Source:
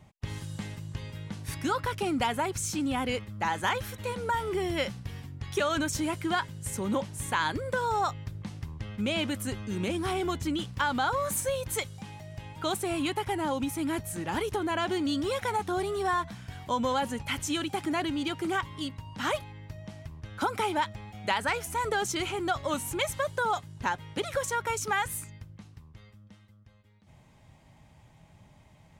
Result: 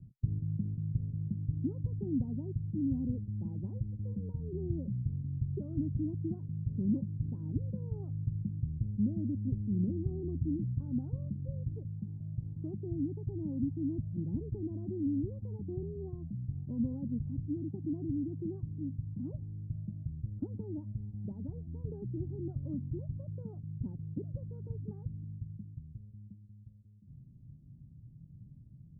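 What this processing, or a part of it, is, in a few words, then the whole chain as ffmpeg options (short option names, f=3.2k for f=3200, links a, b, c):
the neighbour's flat through the wall: -af "lowpass=f=270:w=0.5412,lowpass=f=270:w=1.3066,equalizer=f=130:t=o:w=0.53:g=7.5,volume=1dB"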